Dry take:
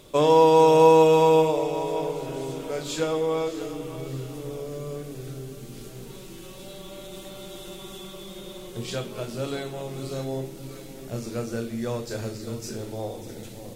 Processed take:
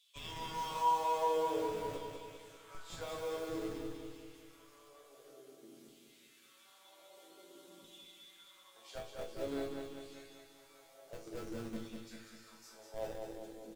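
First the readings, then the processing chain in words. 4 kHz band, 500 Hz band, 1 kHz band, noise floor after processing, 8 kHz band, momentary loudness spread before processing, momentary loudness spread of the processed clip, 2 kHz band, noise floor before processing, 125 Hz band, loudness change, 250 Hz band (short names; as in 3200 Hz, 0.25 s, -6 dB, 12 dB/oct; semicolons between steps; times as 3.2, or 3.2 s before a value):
-13.5 dB, -19.5 dB, -12.5 dB, -63 dBFS, -14.5 dB, 24 LU, 25 LU, -13.5 dB, -42 dBFS, -22.5 dB, -15.5 dB, -16.5 dB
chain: HPF 97 Hz 12 dB/oct; notch 2600 Hz, Q 24; LFO high-pass saw down 0.51 Hz 210–3300 Hz; crackle 15/s -36 dBFS; in parallel at -4 dB: Schmitt trigger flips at -24 dBFS; on the sum: resonator bank A2 major, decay 0.33 s; on a send: feedback echo 0.197 s, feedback 54%, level -5 dB; on the sum: gain -4.5 dB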